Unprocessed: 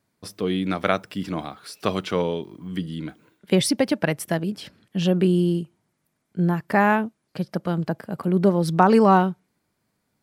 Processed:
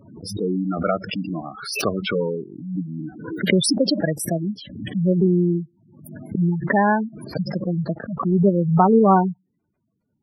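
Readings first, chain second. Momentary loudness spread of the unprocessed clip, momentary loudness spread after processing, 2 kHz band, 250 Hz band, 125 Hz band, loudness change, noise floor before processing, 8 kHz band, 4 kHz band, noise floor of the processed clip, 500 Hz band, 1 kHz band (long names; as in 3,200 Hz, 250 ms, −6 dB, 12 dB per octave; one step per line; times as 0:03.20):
15 LU, 14 LU, −0.5 dB, +2.0 dB, +2.5 dB, +1.5 dB, −75 dBFS, +3.5 dB, +3.0 dB, −74 dBFS, +1.0 dB, +0.5 dB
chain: gate on every frequency bin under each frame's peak −10 dB strong
background raised ahead of every attack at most 67 dB per second
level +1.5 dB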